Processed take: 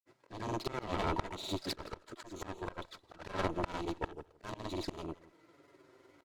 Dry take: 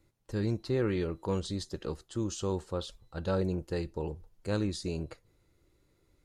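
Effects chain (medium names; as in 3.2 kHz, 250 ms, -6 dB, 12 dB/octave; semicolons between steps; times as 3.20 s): median filter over 15 samples; touch-sensitive flanger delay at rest 8.2 ms, full sweep at -30.5 dBFS; granulator 100 ms, grains 20 per s, pitch spread up and down by 0 st; frequency weighting A; in parallel at -6.5 dB: hard clipper -37.5 dBFS, distortion -9 dB; on the sum: Chebyshev shaper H 3 -14 dB, 4 -10 dB, 5 -35 dB, 7 -12 dB, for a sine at -24 dBFS; comb 3.1 ms, depth 30%; slow attack 659 ms; on a send: delay 167 ms -19.5 dB; on the sum: trim +15 dB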